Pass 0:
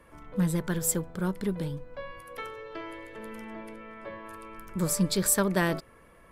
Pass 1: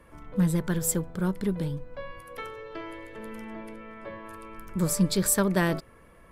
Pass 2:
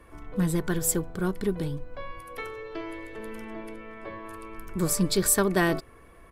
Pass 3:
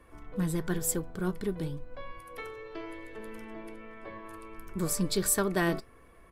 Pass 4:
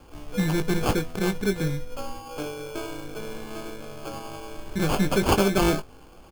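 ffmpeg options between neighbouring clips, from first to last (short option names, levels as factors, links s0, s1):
-af "lowshelf=f=260:g=4"
-af "aecho=1:1:2.7:0.37,volume=1.19"
-af "flanger=delay=3.8:depth=2.9:regen=85:speed=1:shape=sinusoidal"
-filter_complex "[0:a]asplit=2[s0][s1];[s1]asoftclip=type=hard:threshold=0.0501,volume=0.596[s2];[s0][s2]amix=inputs=2:normalize=0,acrusher=samples=23:mix=1:aa=0.000001,asplit=2[s3][s4];[s4]adelay=20,volume=0.376[s5];[s3][s5]amix=inputs=2:normalize=0,volume=1.41"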